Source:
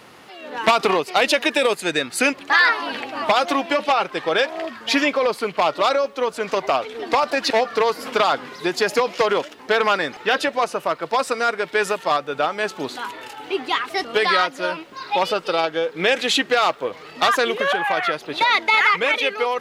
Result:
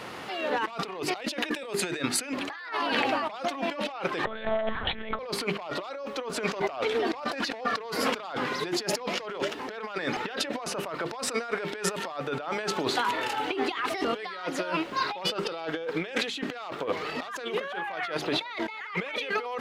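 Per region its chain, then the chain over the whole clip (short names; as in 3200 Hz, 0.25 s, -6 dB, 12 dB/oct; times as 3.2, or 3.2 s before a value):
4.25–5.19 bell 2600 Hz -9 dB 0.25 oct + monotone LPC vocoder at 8 kHz 220 Hz
whole clip: high shelf 6000 Hz -7 dB; notches 50/100/150/200/250/300/350/400 Hz; negative-ratio compressor -31 dBFS, ratio -1; gain -1.5 dB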